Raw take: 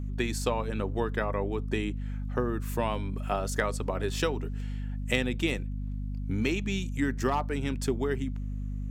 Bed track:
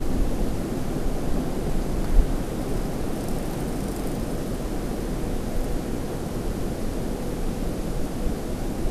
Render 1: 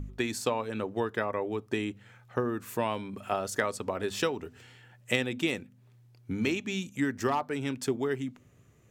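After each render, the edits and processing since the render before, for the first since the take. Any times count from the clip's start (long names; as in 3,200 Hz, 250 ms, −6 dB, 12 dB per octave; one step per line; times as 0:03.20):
hum removal 50 Hz, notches 5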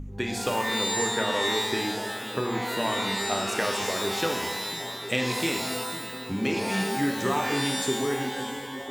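echo through a band-pass that steps 501 ms, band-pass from 200 Hz, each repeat 0.7 octaves, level −7 dB
reverb with rising layers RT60 1.2 s, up +12 semitones, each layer −2 dB, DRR 2.5 dB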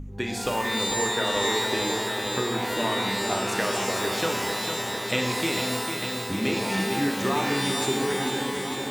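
feedback echo at a low word length 450 ms, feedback 80%, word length 8 bits, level −7 dB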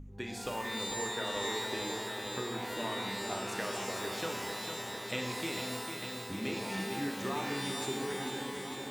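level −10 dB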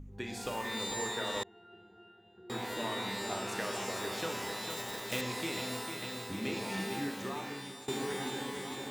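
0:01.43–0:02.50: resonances in every octave F, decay 0.37 s
0:04.70–0:05.23: one scale factor per block 3 bits
0:06.92–0:07.88: fade out, to −14.5 dB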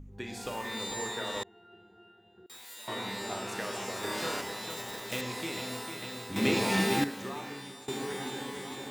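0:02.46–0:02.88: first-order pre-emphasis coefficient 0.97
0:04.00–0:04.41: flutter between parallel walls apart 4.9 metres, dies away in 0.95 s
0:06.36–0:07.04: clip gain +9.5 dB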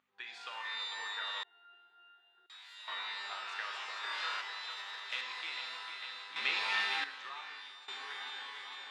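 Chebyshev band-pass filter 1,200–3,800 Hz, order 2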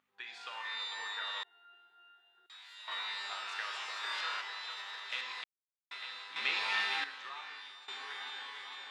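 0:02.91–0:04.21: high-shelf EQ 5,300 Hz +7 dB
0:05.44–0:05.91: silence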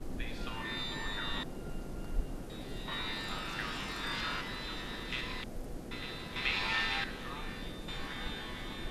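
mix in bed track −16 dB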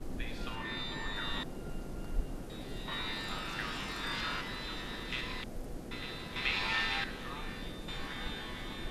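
0:00.55–0:01.16: high-shelf EQ 5,800 Hz −6 dB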